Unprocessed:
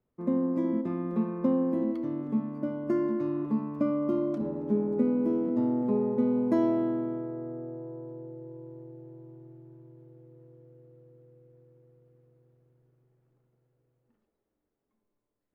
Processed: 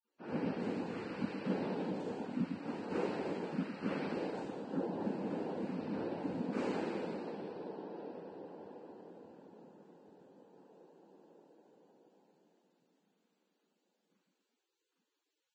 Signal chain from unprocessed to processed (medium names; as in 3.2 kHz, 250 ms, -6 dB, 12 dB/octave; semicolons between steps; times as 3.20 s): differentiator; band-stop 560 Hz, Q 12; in parallel at -2 dB: peak limiter -50 dBFS, peak gain reduction 11 dB; on the sum: gain riding within 3 dB 2 s; vocoder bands 4, saw 230 Hz; on a send: feedback echo behind a band-pass 158 ms, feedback 57%, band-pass 940 Hz, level -12 dB; on the sum: Schroeder reverb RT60 1.4 s, combs from 28 ms, DRR -5 dB; noise-vocoded speech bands 8; trim +9.5 dB; Vorbis 16 kbps 22.05 kHz